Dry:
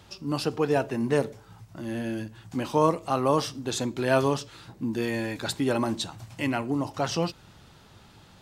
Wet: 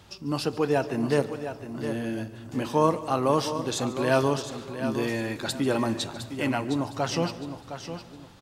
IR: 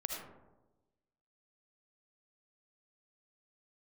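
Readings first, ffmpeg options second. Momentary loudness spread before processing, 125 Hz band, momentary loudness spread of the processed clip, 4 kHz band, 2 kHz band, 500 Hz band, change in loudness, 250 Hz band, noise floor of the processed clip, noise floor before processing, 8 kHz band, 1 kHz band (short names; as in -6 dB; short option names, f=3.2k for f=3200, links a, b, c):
11 LU, +0.5 dB, 12 LU, +0.5 dB, +0.5 dB, +0.5 dB, 0.0 dB, +0.5 dB, -47 dBFS, -54 dBFS, +0.5 dB, +0.5 dB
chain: -filter_complex "[0:a]aecho=1:1:711|1422|2133:0.316|0.0885|0.0248,asplit=2[a][b];[1:a]atrim=start_sample=2205,adelay=143[c];[b][c]afir=irnorm=-1:irlink=0,volume=-16.5dB[d];[a][d]amix=inputs=2:normalize=0"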